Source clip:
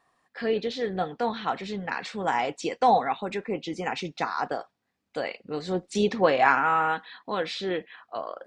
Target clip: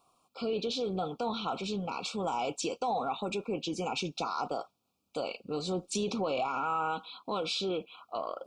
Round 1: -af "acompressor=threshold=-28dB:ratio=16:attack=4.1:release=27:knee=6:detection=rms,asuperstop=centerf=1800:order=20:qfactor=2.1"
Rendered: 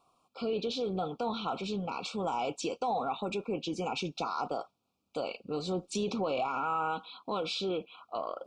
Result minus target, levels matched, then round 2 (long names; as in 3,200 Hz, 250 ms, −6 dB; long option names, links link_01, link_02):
8,000 Hz band −4.0 dB
-af "acompressor=threshold=-28dB:ratio=16:attack=4.1:release=27:knee=6:detection=rms,asuperstop=centerf=1800:order=20:qfactor=2.1,highshelf=frequency=6900:gain=9"